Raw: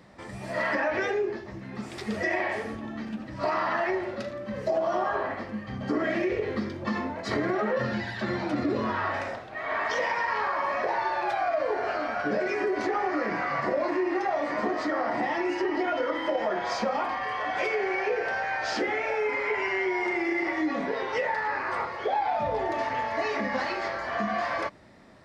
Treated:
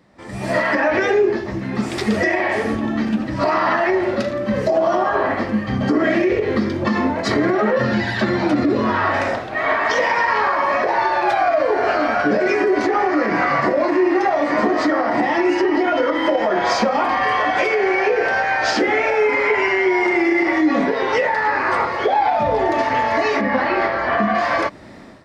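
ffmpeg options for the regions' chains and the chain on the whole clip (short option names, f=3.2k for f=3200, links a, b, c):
-filter_complex "[0:a]asettb=1/sr,asplit=3[a][b][c];[a]atrim=end=23.414[d];[b]atrim=start=23.41:end=24.35,asetpts=PTS-STARTPTS,afade=t=in:d=0.004:c=qsin,afade=t=out:st=0.936:d=0.004:c=qsin,lowpass=3.9k,acrossover=split=2700[e][f];[f]acompressor=threshold=-49dB:ratio=4:attack=1:release=60[g];[e][g]amix=inputs=2:normalize=0[h];[c]atrim=start=24.346[i];[d][h]acrossfade=d=0.004:c1=hsin:c2=qsin[j];[j][i]acrossfade=d=0.004:c1=qsin:c2=hsin,equalizer=f=290:t=o:w=0.76:g=3.5,alimiter=limit=-21.5dB:level=0:latency=1:release=247,dynaudnorm=f=130:g=5:m=16.5dB,volume=-3dB"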